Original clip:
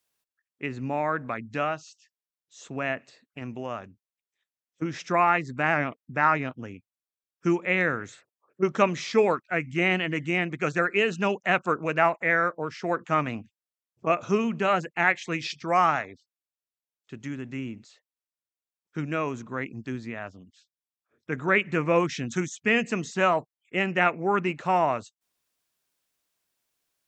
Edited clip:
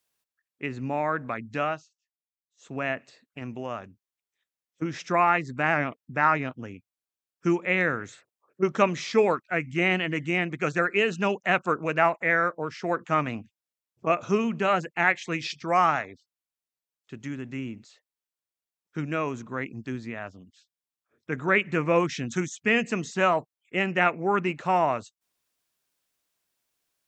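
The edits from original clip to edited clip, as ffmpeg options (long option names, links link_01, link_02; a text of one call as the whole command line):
ffmpeg -i in.wav -filter_complex "[0:a]asplit=3[link_01][link_02][link_03];[link_01]atrim=end=1.89,asetpts=PTS-STARTPTS,afade=type=out:start_time=1.73:duration=0.16:silence=0.0707946[link_04];[link_02]atrim=start=1.89:end=2.57,asetpts=PTS-STARTPTS,volume=-23dB[link_05];[link_03]atrim=start=2.57,asetpts=PTS-STARTPTS,afade=type=in:duration=0.16:silence=0.0707946[link_06];[link_04][link_05][link_06]concat=n=3:v=0:a=1" out.wav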